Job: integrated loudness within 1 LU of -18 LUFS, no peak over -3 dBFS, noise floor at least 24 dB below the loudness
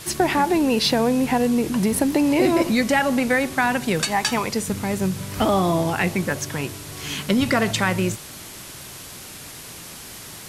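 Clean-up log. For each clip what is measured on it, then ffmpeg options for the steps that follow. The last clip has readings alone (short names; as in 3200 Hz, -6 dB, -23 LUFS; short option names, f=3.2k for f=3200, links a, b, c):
noise floor -39 dBFS; noise floor target -45 dBFS; loudness -21.0 LUFS; peak -6.5 dBFS; loudness target -18.0 LUFS
-> -af "afftdn=nr=6:nf=-39"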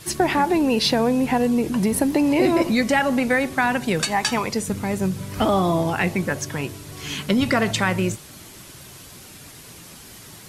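noise floor -43 dBFS; noise floor target -45 dBFS
-> -af "afftdn=nr=6:nf=-43"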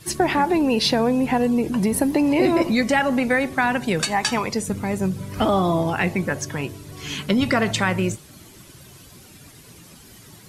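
noise floor -46 dBFS; loudness -21.0 LUFS; peak -7.0 dBFS; loudness target -18.0 LUFS
-> -af "volume=3dB"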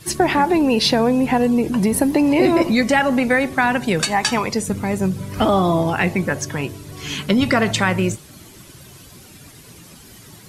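loudness -18.0 LUFS; peak -4.0 dBFS; noise floor -43 dBFS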